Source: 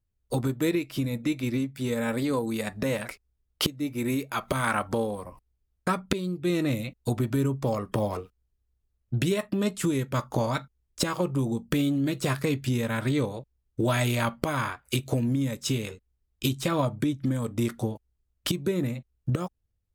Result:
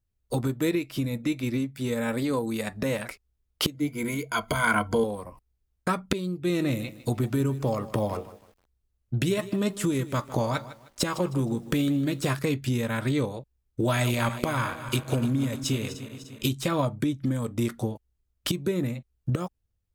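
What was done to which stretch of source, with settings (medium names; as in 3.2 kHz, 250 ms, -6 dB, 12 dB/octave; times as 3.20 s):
3.74–5.04 s: rippled EQ curve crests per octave 1.8, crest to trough 14 dB
6.33–12.39 s: bit-crushed delay 155 ms, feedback 35%, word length 8-bit, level -15 dB
13.84–16.45 s: backward echo that repeats 150 ms, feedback 73%, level -12.5 dB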